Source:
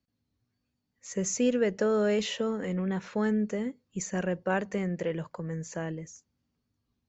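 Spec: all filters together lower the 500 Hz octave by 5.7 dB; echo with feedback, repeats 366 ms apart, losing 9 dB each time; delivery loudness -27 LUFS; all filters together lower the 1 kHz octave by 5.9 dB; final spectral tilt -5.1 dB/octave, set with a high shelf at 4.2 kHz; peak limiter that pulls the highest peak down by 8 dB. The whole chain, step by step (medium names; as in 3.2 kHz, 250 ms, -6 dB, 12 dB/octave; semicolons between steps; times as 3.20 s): peaking EQ 500 Hz -5.5 dB; peaking EQ 1 kHz -6 dB; treble shelf 4.2 kHz -4 dB; peak limiter -27 dBFS; feedback delay 366 ms, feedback 35%, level -9 dB; trim +8.5 dB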